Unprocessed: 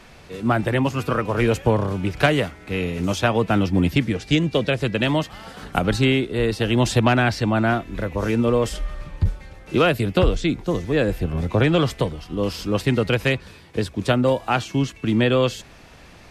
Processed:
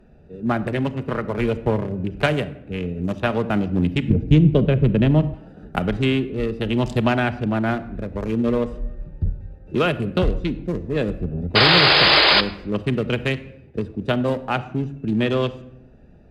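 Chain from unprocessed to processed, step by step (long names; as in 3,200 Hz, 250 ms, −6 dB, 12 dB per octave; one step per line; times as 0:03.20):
adaptive Wiener filter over 41 samples
0:11.55–0:12.41: sound drawn into the spectrogram noise 290–5,100 Hz −13 dBFS
on a send at −10.5 dB: convolution reverb RT60 0.80 s, pre-delay 5 ms
on the sum: harmonic generator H 5 −38 dB, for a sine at 1 dBFS
0:04.10–0:05.34: spectral tilt −3.5 dB per octave
level −2 dB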